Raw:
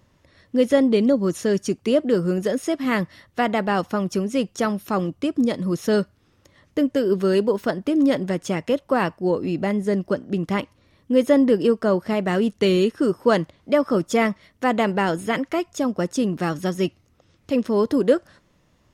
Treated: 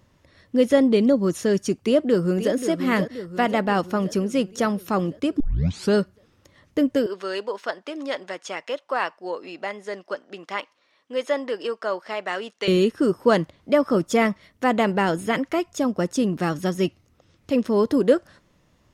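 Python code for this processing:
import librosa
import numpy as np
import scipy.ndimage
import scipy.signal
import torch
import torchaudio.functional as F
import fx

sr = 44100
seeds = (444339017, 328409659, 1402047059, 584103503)

y = fx.echo_throw(x, sr, start_s=1.85, length_s=0.69, ms=530, feedback_pct=60, wet_db=-9.5)
y = fx.bandpass_edges(y, sr, low_hz=720.0, high_hz=6500.0, at=(7.06, 12.68))
y = fx.edit(y, sr, fx.tape_start(start_s=5.4, length_s=0.54), tone=tone)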